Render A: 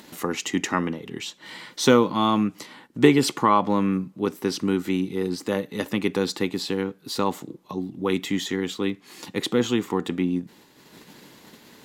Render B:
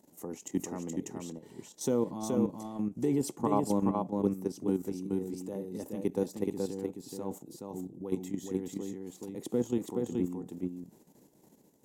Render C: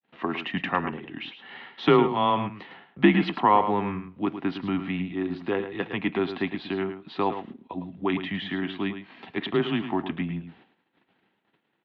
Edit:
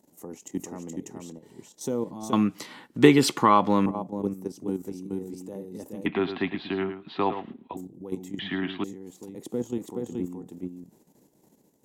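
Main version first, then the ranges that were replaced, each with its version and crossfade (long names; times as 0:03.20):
B
0:02.33–0:03.86: punch in from A
0:06.06–0:07.77: punch in from C
0:08.39–0:08.84: punch in from C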